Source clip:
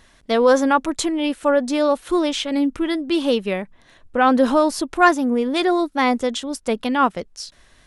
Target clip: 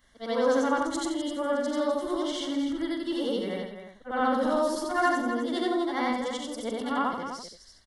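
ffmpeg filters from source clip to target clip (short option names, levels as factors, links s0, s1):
-af "afftfilt=real='re':imag='-im':win_size=8192:overlap=0.75,asuperstop=centerf=2500:order=20:qfactor=5.5,aecho=1:1:43.73|253.6:0.316|0.355,volume=0.531"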